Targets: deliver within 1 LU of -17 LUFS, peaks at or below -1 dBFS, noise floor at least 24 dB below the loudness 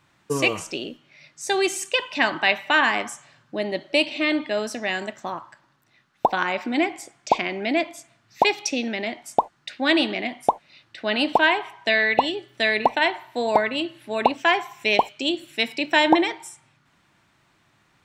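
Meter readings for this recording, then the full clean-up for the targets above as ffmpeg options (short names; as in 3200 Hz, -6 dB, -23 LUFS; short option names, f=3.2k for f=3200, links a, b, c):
loudness -23.0 LUFS; peak -2.5 dBFS; loudness target -17.0 LUFS
-> -af "volume=6dB,alimiter=limit=-1dB:level=0:latency=1"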